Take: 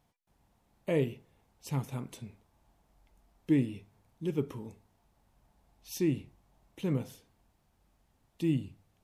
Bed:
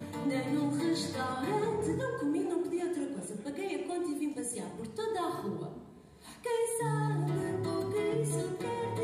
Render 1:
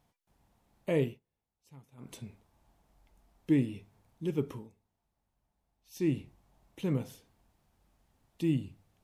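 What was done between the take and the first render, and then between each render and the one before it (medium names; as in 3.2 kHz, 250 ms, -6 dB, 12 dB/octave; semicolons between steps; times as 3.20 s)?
1.06–2.11 s: dip -21 dB, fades 0.14 s; 4.55–6.07 s: dip -12.5 dB, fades 0.14 s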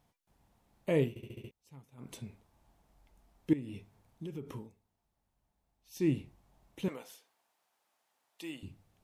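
1.09 s: stutter in place 0.07 s, 6 plays; 3.53–4.53 s: compression, threshold -38 dBFS; 6.88–8.63 s: high-pass 690 Hz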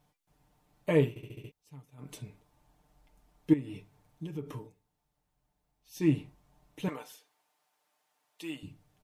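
dynamic bell 1.1 kHz, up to +6 dB, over -51 dBFS, Q 0.84; comb 6.7 ms, depth 68%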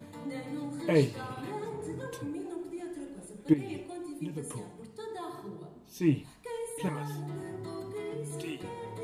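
add bed -6.5 dB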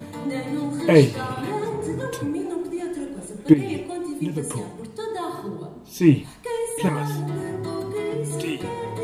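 trim +11 dB; peak limiter -2 dBFS, peak gain reduction 1 dB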